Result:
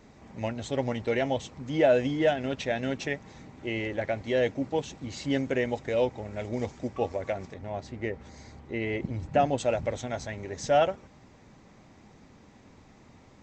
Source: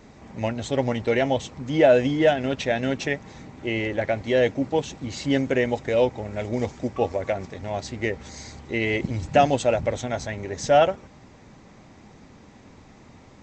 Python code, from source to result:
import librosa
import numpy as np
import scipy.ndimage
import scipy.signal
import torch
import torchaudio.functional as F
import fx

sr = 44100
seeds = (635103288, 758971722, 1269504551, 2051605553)

y = fx.high_shelf(x, sr, hz=3000.0, db=-11.5, at=(7.54, 9.58))
y = F.gain(torch.from_numpy(y), -5.5).numpy()